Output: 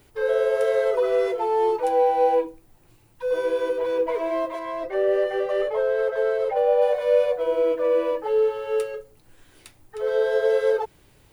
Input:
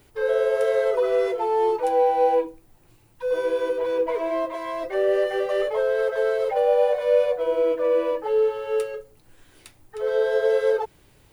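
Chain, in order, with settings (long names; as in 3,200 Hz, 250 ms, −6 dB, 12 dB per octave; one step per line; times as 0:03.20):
0:04.59–0:06.82: high-shelf EQ 3,100 Hz −7.5 dB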